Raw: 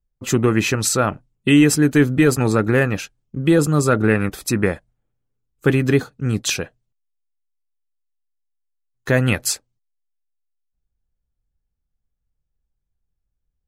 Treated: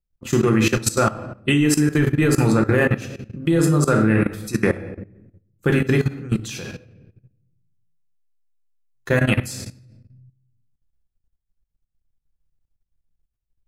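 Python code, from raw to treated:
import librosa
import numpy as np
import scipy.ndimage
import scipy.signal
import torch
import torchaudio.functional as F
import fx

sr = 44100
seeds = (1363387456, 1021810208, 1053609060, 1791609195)

y = fx.room_shoebox(x, sr, seeds[0], volume_m3=240.0, walls='mixed', distance_m=0.86)
y = fx.level_steps(y, sr, step_db=16)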